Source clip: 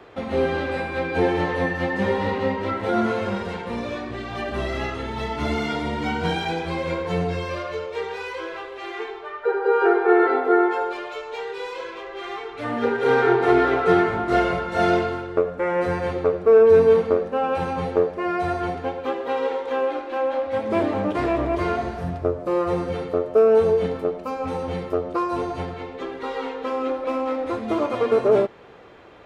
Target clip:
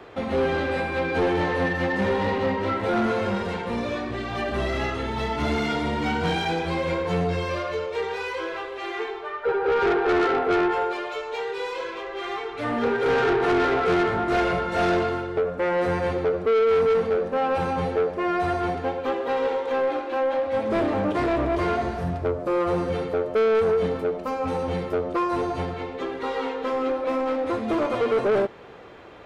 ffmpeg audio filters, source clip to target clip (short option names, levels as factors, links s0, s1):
-af "asoftclip=type=tanh:threshold=0.106,volume=1.26"